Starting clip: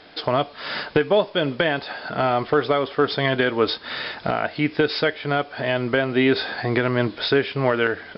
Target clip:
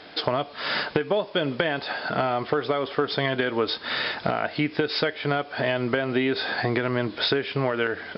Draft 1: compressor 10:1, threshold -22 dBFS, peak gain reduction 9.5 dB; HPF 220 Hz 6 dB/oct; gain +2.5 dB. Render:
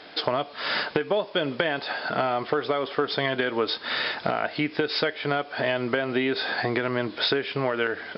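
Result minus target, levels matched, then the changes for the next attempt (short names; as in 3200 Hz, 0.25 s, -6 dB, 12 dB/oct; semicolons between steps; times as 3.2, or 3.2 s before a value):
125 Hz band -4.0 dB
change: HPF 75 Hz 6 dB/oct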